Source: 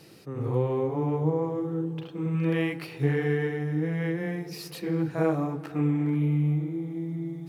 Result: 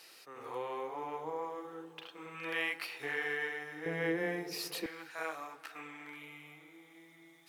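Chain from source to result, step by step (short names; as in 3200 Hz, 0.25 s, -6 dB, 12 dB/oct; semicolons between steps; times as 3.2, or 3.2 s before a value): HPF 1000 Hz 12 dB/oct, from 3.86 s 390 Hz, from 4.86 s 1500 Hz; gain +1 dB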